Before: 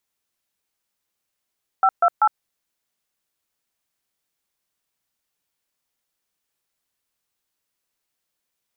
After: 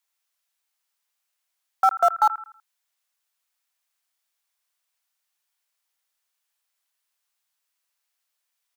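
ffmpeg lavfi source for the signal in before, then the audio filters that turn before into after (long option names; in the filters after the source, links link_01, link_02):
-f lavfi -i "aevalsrc='0.178*clip(min(mod(t,0.193),0.06-mod(t,0.193))/0.002,0,1)*(eq(floor(t/0.193),0)*(sin(2*PI*770*mod(t,0.193))+sin(2*PI*1336*mod(t,0.193)))+eq(floor(t/0.193),1)*(sin(2*PI*697*mod(t,0.193))+sin(2*PI*1336*mod(t,0.193)))+eq(floor(t/0.193),2)*(sin(2*PI*852*mod(t,0.193))+sin(2*PI*1336*mod(t,0.193))))':duration=0.579:sample_rate=44100"
-filter_complex "[0:a]acrossover=split=580|760|850[link_01][link_02][link_03][link_04];[link_01]acrusher=bits=5:mix=0:aa=0.000001[link_05];[link_04]aecho=1:1:81|162|243|324:0.398|0.143|0.0516|0.0186[link_06];[link_05][link_02][link_03][link_06]amix=inputs=4:normalize=0"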